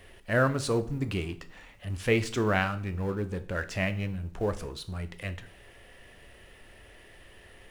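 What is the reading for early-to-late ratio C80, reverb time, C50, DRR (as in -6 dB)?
19.5 dB, 0.50 s, 16.0 dB, 10.0 dB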